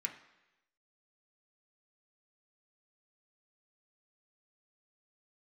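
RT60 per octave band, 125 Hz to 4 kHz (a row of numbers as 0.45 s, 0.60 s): 0.90 s, 0.85 s, 1.0 s, 1.0 s, 1.0 s, 1.0 s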